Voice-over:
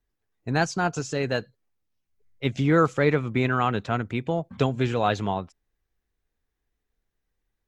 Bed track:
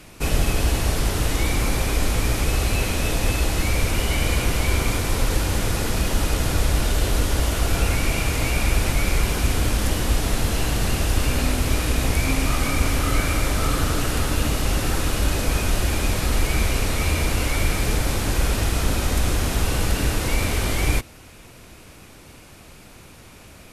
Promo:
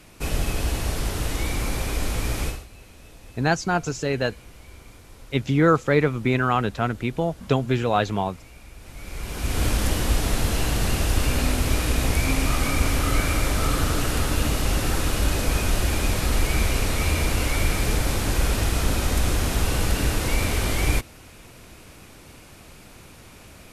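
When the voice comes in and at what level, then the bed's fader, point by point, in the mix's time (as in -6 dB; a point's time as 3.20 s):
2.90 s, +2.0 dB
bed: 2.47 s -4.5 dB
2.67 s -24.5 dB
8.76 s -24.5 dB
9.63 s -1 dB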